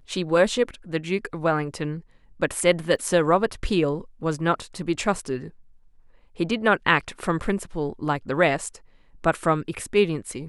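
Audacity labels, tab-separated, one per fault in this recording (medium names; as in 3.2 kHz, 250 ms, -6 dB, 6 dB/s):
2.960000	2.960000	dropout 2.1 ms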